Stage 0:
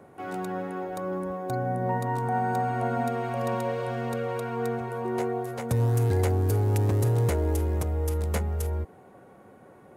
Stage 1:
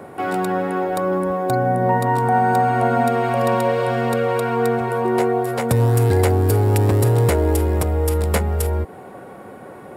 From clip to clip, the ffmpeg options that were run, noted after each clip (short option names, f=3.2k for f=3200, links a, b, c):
-filter_complex "[0:a]lowshelf=f=190:g=-5,bandreject=f=6.3k:w=6.4,asplit=2[a][b];[b]acompressor=threshold=-36dB:ratio=6,volume=0.5dB[c];[a][c]amix=inputs=2:normalize=0,volume=8.5dB"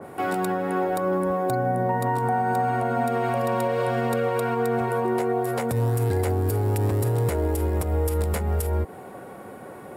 -af "highshelf=f=7.5k:g=7,alimiter=limit=-12.5dB:level=0:latency=1:release=143,adynamicequalizer=threshold=0.0141:dfrequency=2300:dqfactor=0.7:tfrequency=2300:tqfactor=0.7:attack=5:release=100:ratio=0.375:range=1.5:mode=cutabove:tftype=highshelf,volume=-2.5dB"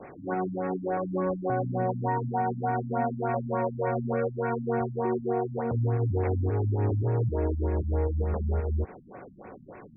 -af "aresample=16000,acrusher=bits=6:mix=0:aa=0.000001,aresample=44100,aeval=exprs='sgn(val(0))*max(abs(val(0))-0.00376,0)':c=same,afftfilt=real='re*lt(b*sr/1024,250*pow(2700/250,0.5+0.5*sin(2*PI*3.4*pts/sr)))':imag='im*lt(b*sr/1024,250*pow(2700/250,0.5+0.5*sin(2*PI*3.4*pts/sr)))':win_size=1024:overlap=0.75,volume=-2.5dB"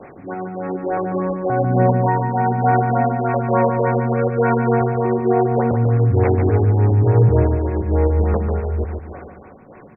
-af "dynaudnorm=f=180:g=13:m=6.5dB,tremolo=f=1.1:d=0.44,aecho=1:1:145|290|435|580|725:0.501|0.205|0.0842|0.0345|0.0142,volume=5.5dB"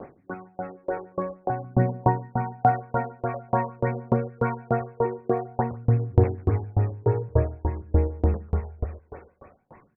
-af "aphaser=in_gain=1:out_gain=1:delay=2.3:decay=0.46:speed=0.49:type=triangular,aeval=exprs='val(0)*pow(10,-32*if(lt(mod(3.4*n/s,1),2*abs(3.4)/1000),1-mod(3.4*n/s,1)/(2*abs(3.4)/1000),(mod(3.4*n/s,1)-2*abs(3.4)/1000)/(1-2*abs(3.4)/1000))/20)':c=same,volume=-2.5dB"